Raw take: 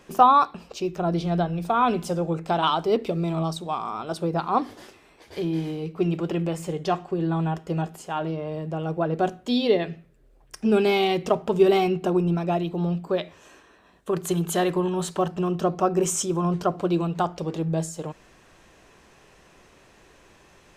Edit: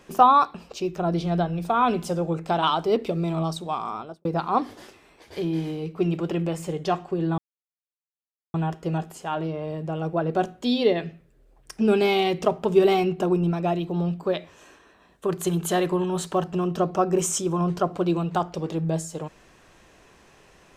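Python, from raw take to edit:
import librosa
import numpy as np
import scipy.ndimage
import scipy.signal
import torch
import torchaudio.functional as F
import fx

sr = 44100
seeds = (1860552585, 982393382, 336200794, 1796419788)

y = fx.studio_fade_out(x, sr, start_s=3.91, length_s=0.34)
y = fx.edit(y, sr, fx.insert_silence(at_s=7.38, length_s=1.16), tone=tone)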